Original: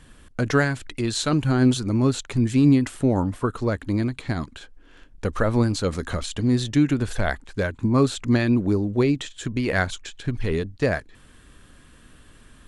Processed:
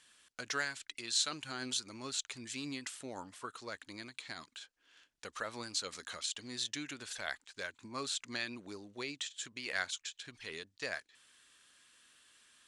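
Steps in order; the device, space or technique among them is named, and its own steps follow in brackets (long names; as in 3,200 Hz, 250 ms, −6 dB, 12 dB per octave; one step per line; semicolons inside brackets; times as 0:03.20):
piezo pickup straight into a mixer (low-pass filter 6,000 Hz 12 dB per octave; first difference)
level +1.5 dB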